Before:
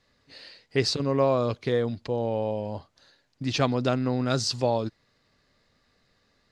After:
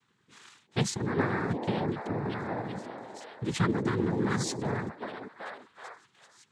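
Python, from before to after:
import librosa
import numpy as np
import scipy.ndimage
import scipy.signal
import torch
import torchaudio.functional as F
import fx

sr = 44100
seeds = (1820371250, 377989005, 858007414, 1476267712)

y = fx.fixed_phaser(x, sr, hz=1500.0, stages=4)
y = fx.echo_stepped(y, sr, ms=383, hz=420.0, octaves=0.7, feedback_pct=70, wet_db=-1.5)
y = fx.noise_vocoder(y, sr, seeds[0], bands=6)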